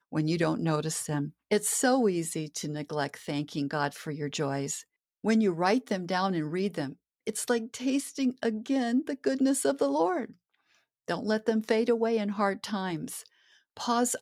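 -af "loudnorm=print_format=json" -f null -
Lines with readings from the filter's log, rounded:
"input_i" : "-29.4",
"input_tp" : "-11.7",
"input_lra" : "1.2",
"input_thresh" : "-39.8",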